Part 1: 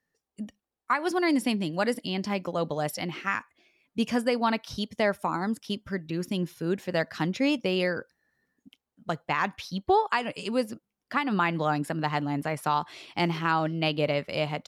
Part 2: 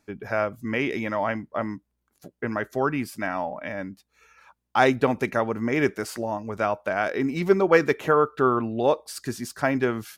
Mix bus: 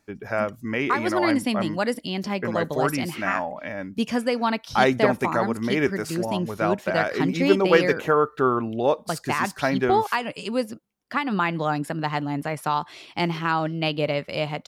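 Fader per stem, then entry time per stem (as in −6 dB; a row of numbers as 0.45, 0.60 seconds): +2.0, 0.0 decibels; 0.00, 0.00 seconds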